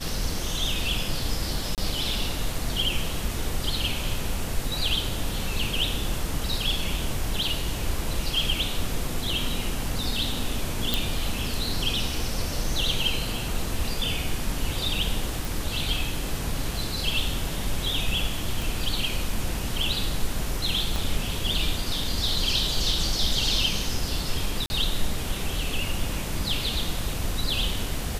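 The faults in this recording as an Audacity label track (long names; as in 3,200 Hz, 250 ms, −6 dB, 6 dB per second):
1.750000	1.780000	drop-out 28 ms
10.940000	10.940000	click
15.450000	15.450000	click
18.620000	18.620000	click
20.960000	20.960000	click
24.660000	24.700000	drop-out 40 ms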